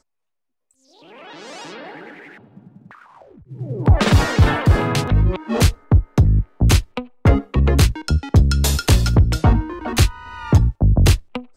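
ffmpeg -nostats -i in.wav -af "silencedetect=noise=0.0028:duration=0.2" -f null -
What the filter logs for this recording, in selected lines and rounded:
silence_start: 0.00
silence_end: 0.71 | silence_duration: 0.71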